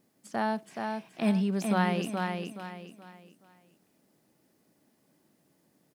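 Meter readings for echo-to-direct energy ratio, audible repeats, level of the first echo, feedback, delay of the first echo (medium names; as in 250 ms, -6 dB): -4.0 dB, 4, -4.5 dB, 33%, 424 ms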